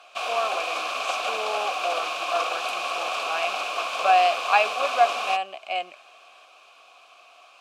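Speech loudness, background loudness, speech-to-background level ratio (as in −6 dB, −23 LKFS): −26.0 LKFS, −27.5 LKFS, 1.5 dB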